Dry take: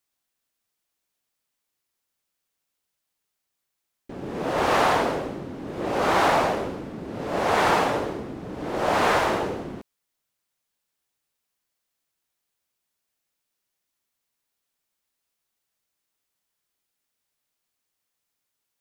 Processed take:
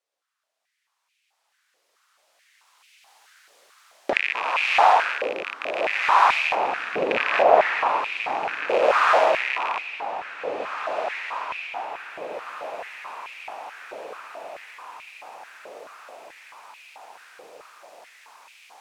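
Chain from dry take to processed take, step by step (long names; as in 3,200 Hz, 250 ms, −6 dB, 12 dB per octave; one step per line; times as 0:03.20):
loose part that buzzes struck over −36 dBFS, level −18 dBFS
camcorder AGC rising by 9.5 dB per second
0:06.55–0:08.69: spectral tilt −4.5 dB per octave
0:07.10–0:07.42: gain on a spectral selection 1,500–12,000 Hz +12 dB
high-frequency loss of the air 51 metres
on a send: feedback delay with all-pass diffusion 1,990 ms, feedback 52%, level −9.5 dB
on the sum: high-pass on a step sequencer 4.6 Hz 510–2,400 Hz
level −2 dB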